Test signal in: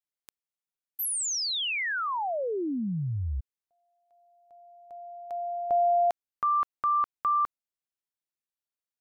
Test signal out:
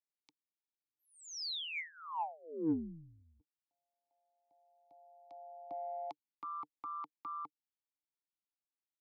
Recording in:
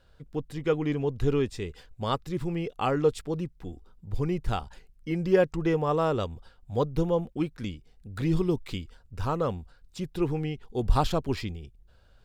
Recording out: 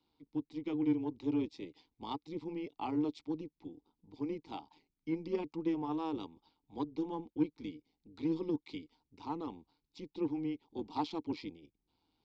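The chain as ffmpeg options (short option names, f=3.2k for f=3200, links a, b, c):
-filter_complex "[0:a]lowpass=f=5.1k:w=0.5412,lowpass=f=5.1k:w=1.3066,acrossover=split=180|770[a][b][c];[a]acompressor=threshold=-44dB:ratio=6:release=206[d];[d][b][c]amix=inputs=3:normalize=0,asplit=3[e][f][g];[e]bandpass=f=300:t=q:w=8,volume=0dB[h];[f]bandpass=f=870:t=q:w=8,volume=-6dB[i];[g]bandpass=f=2.24k:t=q:w=8,volume=-9dB[j];[h][i][j]amix=inputs=3:normalize=0,tremolo=f=160:d=0.571,aexciter=amount=5.7:drive=7.5:freq=3.7k,asplit=2[k][l];[l]asoftclip=type=tanh:threshold=-34dB,volume=-4.5dB[m];[k][m]amix=inputs=2:normalize=0,volume=1dB"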